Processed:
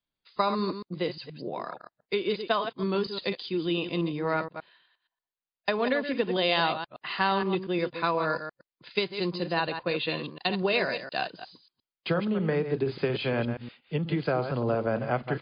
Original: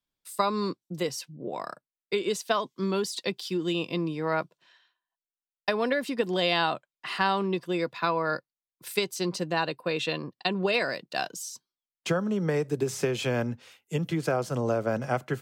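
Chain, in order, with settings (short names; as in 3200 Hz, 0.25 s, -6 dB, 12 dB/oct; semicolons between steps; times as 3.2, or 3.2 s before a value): reverse delay 0.118 s, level -8.5 dB; MP3 32 kbps 11025 Hz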